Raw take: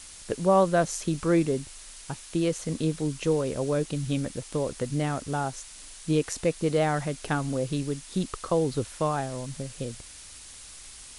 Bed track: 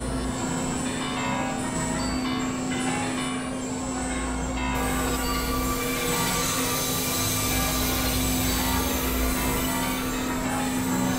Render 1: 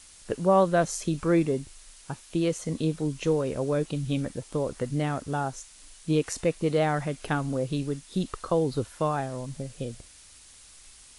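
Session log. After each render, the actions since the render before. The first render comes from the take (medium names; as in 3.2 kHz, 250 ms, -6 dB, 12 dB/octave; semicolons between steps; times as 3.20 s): noise print and reduce 6 dB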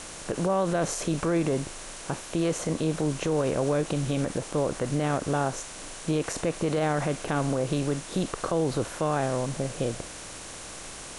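spectral levelling over time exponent 0.6; peak limiter -17 dBFS, peak gain reduction 8.5 dB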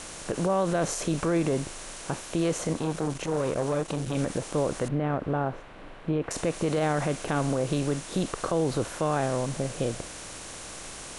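2.73–4.15 s: transformer saturation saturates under 430 Hz; 4.88–6.31 s: distance through air 490 m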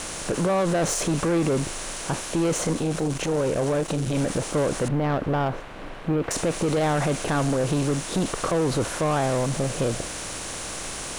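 waveshaping leveller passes 2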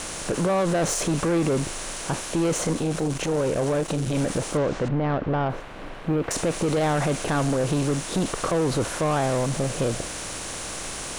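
4.57–5.50 s: distance through air 140 m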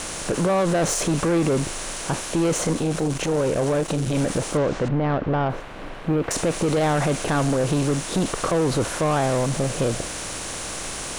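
trim +2 dB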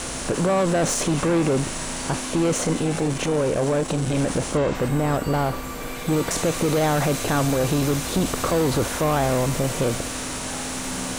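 add bed track -7.5 dB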